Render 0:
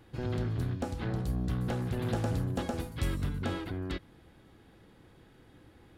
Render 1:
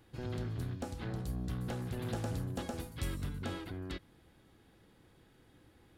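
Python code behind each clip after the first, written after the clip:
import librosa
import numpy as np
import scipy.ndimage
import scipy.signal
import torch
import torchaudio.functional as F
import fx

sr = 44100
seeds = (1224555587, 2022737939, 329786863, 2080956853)

y = fx.high_shelf(x, sr, hz=4100.0, db=6.0)
y = y * librosa.db_to_amplitude(-6.0)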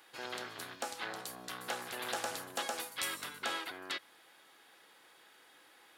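y = scipy.signal.sosfilt(scipy.signal.butter(2, 870.0, 'highpass', fs=sr, output='sos'), x)
y = y * librosa.db_to_amplitude(10.0)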